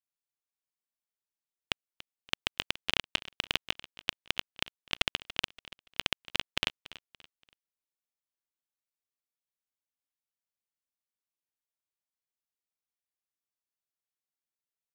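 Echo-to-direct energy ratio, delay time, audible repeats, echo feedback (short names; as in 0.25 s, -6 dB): -17.5 dB, 0.286 s, 2, 35%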